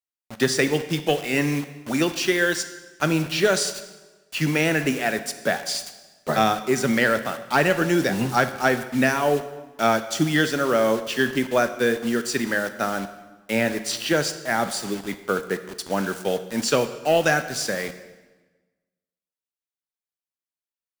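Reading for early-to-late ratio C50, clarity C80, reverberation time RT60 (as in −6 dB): 12.0 dB, 13.5 dB, 1.3 s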